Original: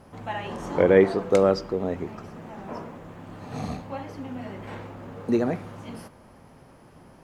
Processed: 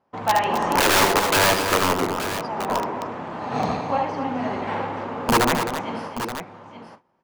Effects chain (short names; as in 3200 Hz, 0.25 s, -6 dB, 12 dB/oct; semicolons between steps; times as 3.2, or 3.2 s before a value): tracing distortion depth 0.093 ms; gate -45 dBFS, range -28 dB; HPF 330 Hz 6 dB/oct; air absorption 110 m; in parallel at +3 dB: compressor 12:1, threshold -29 dBFS, peak gain reduction 16.5 dB; on the sum: wrapped overs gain 16.5 dB; bell 920 Hz +6 dB 0.6 oct; on a send: tapped delay 75/262/876 ms -7/-8.5/-10.5 dB; on the sum: gain +3 dB